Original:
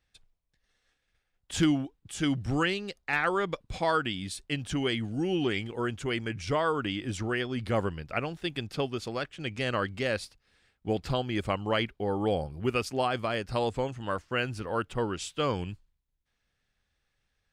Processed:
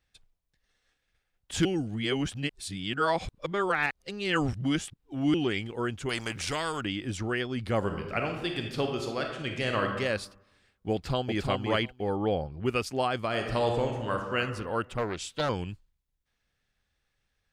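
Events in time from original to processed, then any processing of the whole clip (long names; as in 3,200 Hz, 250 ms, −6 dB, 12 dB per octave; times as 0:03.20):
0:01.65–0:05.34: reverse
0:06.09–0:06.81: every bin compressed towards the loudest bin 2 to 1
0:07.78–0:09.98: thrown reverb, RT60 0.98 s, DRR 2.5 dB
0:10.93–0:11.43: delay throw 350 ms, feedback 10%, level −3 dB
0:12.16–0:12.66: low-pass filter 3,900 Hz
0:13.27–0:14.37: thrown reverb, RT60 1.3 s, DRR 2.5 dB
0:14.97–0:15.49: highs frequency-modulated by the lows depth 0.63 ms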